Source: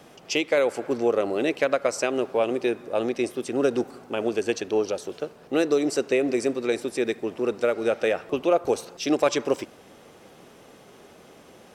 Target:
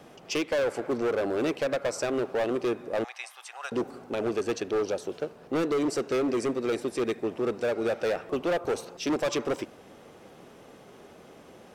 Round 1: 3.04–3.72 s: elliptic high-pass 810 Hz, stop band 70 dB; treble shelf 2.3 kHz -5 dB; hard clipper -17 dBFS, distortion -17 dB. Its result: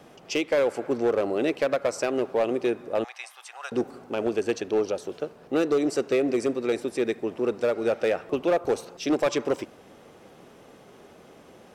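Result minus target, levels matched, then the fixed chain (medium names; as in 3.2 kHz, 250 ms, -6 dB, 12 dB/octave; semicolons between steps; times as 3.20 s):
hard clipper: distortion -8 dB
3.04–3.72 s: elliptic high-pass 810 Hz, stop band 70 dB; treble shelf 2.3 kHz -5 dB; hard clipper -23 dBFS, distortion -8 dB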